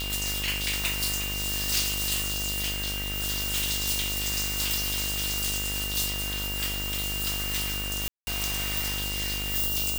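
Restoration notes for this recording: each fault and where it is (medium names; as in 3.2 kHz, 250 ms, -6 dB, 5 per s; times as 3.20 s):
buzz 50 Hz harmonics 30 -35 dBFS
whine 2.8 kHz -33 dBFS
8.08–8.27 s: dropout 190 ms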